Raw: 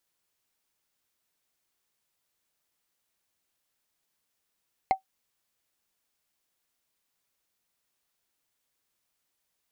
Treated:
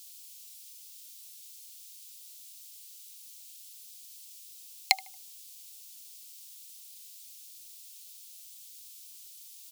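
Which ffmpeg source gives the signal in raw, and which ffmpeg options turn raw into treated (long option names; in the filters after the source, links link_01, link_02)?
-f lavfi -i "aevalsrc='0.2*pow(10,-3*t/0.11)*sin(2*PI*766*t)+0.0631*pow(10,-3*t/0.033)*sin(2*PI*2111.9*t)+0.02*pow(10,-3*t/0.015)*sin(2*PI*4139.5*t)+0.00631*pow(10,-3*t/0.008)*sin(2*PI*6842.7*t)+0.002*pow(10,-3*t/0.005)*sin(2*PI*10218.4*t)':duration=0.45:sample_rate=44100"
-filter_complex "[0:a]aexciter=amount=12:drive=9.1:freq=2500,highpass=frequency=860:width=0.5412,highpass=frequency=860:width=1.3066,asplit=2[link_01][link_02];[link_02]adelay=76,lowpass=frequency=2000:poles=1,volume=-18.5dB,asplit=2[link_03][link_04];[link_04]adelay=76,lowpass=frequency=2000:poles=1,volume=0.42,asplit=2[link_05][link_06];[link_06]adelay=76,lowpass=frequency=2000:poles=1,volume=0.42[link_07];[link_03][link_05][link_07]amix=inputs=3:normalize=0[link_08];[link_01][link_08]amix=inputs=2:normalize=0"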